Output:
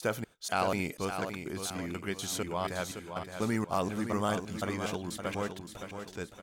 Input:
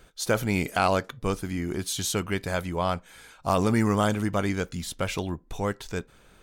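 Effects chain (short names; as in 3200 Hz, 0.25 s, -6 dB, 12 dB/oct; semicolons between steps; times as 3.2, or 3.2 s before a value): slices in reverse order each 0.243 s, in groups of 2; HPF 130 Hz 6 dB/oct; on a send: feedback echo 0.566 s, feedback 43%, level -8 dB; on the sum: gain -6.5 dB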